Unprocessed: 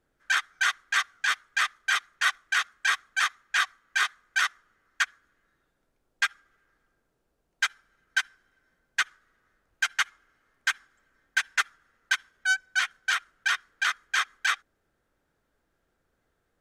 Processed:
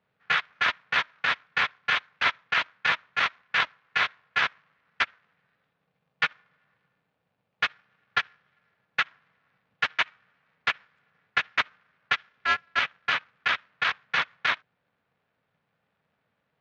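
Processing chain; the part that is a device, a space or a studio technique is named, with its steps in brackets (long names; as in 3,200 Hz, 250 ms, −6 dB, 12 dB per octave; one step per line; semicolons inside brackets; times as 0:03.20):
ring modulator pedal into a guitar cabinet (ring modulator with a square carrier 160 Hz; loudspeaker in its box 100–4,100 Hz, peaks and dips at 220 Hz −3 dB, 340 Hz −10 dB, 2,500 Hz +4 dB)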